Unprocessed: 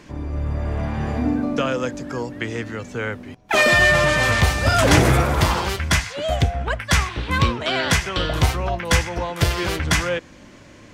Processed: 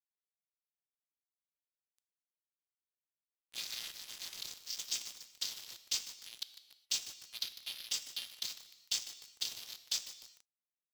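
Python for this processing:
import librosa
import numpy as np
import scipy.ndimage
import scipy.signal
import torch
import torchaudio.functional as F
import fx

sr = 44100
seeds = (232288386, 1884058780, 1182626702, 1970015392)

y = fx.chord_vocoder(x, sr, chord='minor triad', root=58)
y = scipy.signal.sosfilt(scipy.signal.cheby2(4, 50, 1500.0, 'highpass', fs=sr, output='sos'), y)
y = fx.rider(y, sr, range_db=3, speed_s=0.5)
y = np.sign(y) * np.maximum(np.abs(y) - 10.0 ** (-42.0 / 20.0), 0.0)
y = fx.rev_gated(y, sr, seeds[0], gate_ms=440, shape='falling', drr_db=11.0)
y = fx.echo_crushed(y, sr, ms=150, feedback_pct=80, bits=7, wet_db=-12)
y = y * 10.0 ** (7.0 / 20.0)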